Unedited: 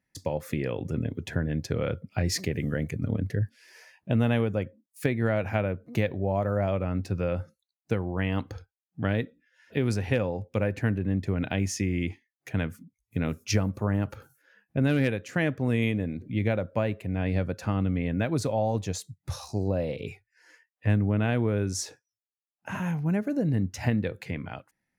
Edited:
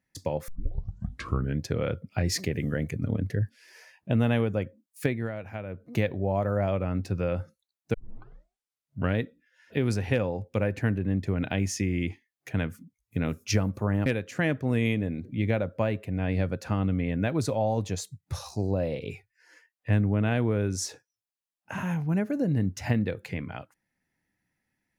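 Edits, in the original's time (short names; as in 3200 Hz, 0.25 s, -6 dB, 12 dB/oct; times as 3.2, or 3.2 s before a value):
0.48 tape start 1.13 s
5.05–5.93 dip -10 dB, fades 0.27 s
7.94 tape start 1.22 s
14.06–15.03 cut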